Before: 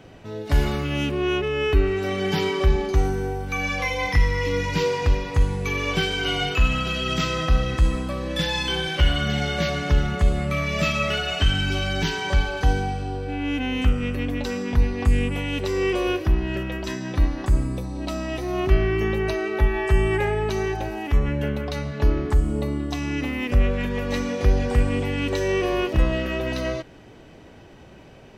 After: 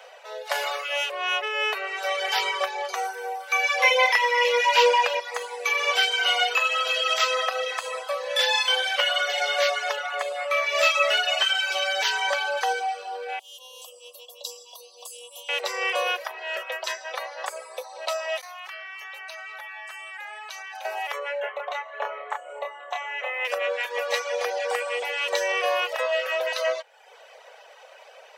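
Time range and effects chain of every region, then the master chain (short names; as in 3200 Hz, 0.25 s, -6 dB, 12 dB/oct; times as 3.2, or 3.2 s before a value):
3.83–5.2 bell 2800 Hz +8 dB 0.57 oct + small resonant body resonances 570/940/1600 Hz, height 8 dB, ringing for 30 ms
9.96–10.75 tone controls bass -3 dB, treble -4 dB + notches 60/120/180/240/300/360/420/480 Hz
13.39–15.49 elliptic band-stop 990–3100 Hz, stop band 50 dB + pre-emphasis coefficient 0.9 + comb 1.8 ms, depth 74%
18.38–20.85 HPF 1100 Hz + level quantiser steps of 21 dB
21.4–23.45 running mean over 9 samples + doubler 29 ms -4.5 dB
whole clip: reverb removal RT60 0.73 s; steep high-pass 490 Hz 72 dB/oct; gain +5.5 dB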